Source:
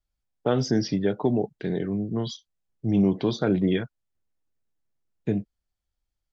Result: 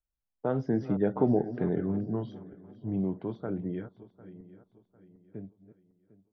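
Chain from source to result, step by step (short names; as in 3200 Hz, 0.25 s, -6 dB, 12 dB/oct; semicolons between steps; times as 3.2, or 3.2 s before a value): regenerating reverse delay 0.364 s, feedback 65%, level -14 dB; Doppler pass-by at 1.46, 11 m/s, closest 6.7 m; Chebyshev low-pass 1200 Hz, order 2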